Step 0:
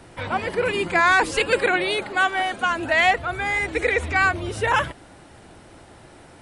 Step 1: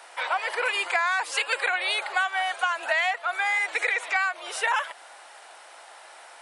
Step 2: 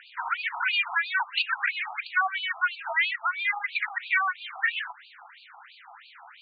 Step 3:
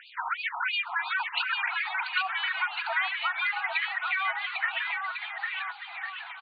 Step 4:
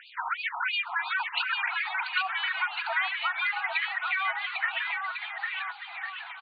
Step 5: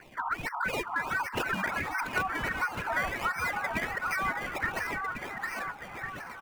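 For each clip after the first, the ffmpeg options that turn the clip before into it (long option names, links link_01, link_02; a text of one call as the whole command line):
ffmpeg -i in.wav -af "highpass=frequency=680:width=0.5412,highpass=frequency=680:width=1.3066,acompressor=threshold=-26dB:ratio=6,volume=4dB" out.wav
ffmpeg -i in.wav -af "acrusher=bits=7:mix=0:aa=0.000001,afftfilt=real='re*between(b*sr/1024,940*pow(3400/940,0.5+0.5*sin(2*PI*3*pts/sr))/1.41,940*pow(3400/940,0.5+0.5*sin(2*PI*3*pts/sr))*1.41)':imag='im*between(b*sr/1024,940*pow(3400/940,0.5+0.5*sin(2*PI*3*pts/sr))/1.41,940*pow(3400/940,0.5+0.5*sin(2*PI*3*pts/sr))*1.41)':win_size=1024:overlap=0.75,volume=3dB" out.wav
ffmpeg -i in.wav -filter_complex "[0:a]acompressor=threshold=-26dB:ratio=6,asplit=2[link_01][link_02];[link_02]aecho=0:1:800|1400|1850|2188|2441:0.631|0.398|0.251|0.158|0.1[link_03];[link_01][link_03]amix=inputs=2:normalize=0" out.wav
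ffmpeg -i in.wav -af anull out.wav
ffmpeg -i in.wav -filter_complex "[0:a]acrossover=split=1200|1600|1900[link_01][link_02][link_03][link_04];[link_04]acrusher=samples=23:mix=1:aa=0.000001:lfo=1:lforange=23:lforate=1.4[link_05];[link_01][link_02][link_03][link_05]amix=inputs=4:normalize=0,asoftclip=type=tanh:threshold=-16dB" out.wav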